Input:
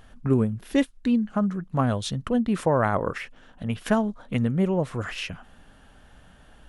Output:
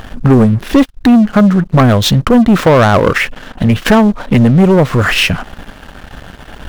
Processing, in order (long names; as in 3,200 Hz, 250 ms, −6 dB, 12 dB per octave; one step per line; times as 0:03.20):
running median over 5 samples
in parallel at +2 dB: downward compressor, threshold −31 dBFS, peak gain reduction 14.5 dB
on the sum: leveller curve on the samples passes 3
level +5.5 dB